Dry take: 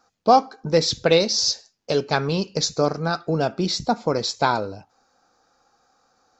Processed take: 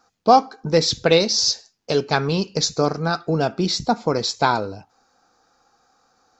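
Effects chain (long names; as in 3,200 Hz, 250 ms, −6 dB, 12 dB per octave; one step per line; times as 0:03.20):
parametric band 570 Hz −4.5 dB 0.2 octaves
level +2 dB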